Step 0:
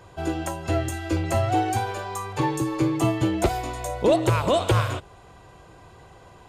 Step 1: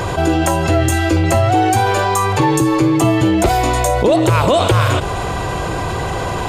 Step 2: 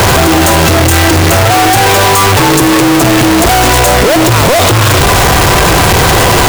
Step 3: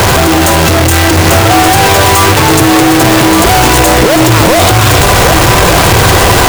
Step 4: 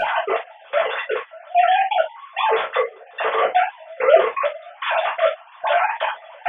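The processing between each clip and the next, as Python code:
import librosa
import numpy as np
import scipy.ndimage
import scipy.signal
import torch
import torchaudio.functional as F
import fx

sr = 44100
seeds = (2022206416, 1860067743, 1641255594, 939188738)

y1 = fx.env_flatten(x, sr, amount_pct=70)
y1 = y1 * librosa.db_to_amplitude(5.0)
y2 = np.sign(y1) * np.sqrt(np.mean(np.square(y1)))
y2 = y2 * librosa.db_to_amplitude(8.0)
y3 = y2 + 10.0 ** (-6.0 / 20.0) * np.pad(y2, (int(1177 * sr / 1000.0), 0))[:len(y2)]
y4 = fx.sine_speech(y3, sr)
y4 = fx.step_gate(y4, sr, bpm=165, pattern='xx.x....x', floor_db=-24.0, edge_ms=4.5)
y4 = fx.rev_gated(y4, sr, seeds[0], gate_ms=90, shape='falling', drr_db=-4.5)
y4 = y4 * librosa.db_to_amplitude(-17.5)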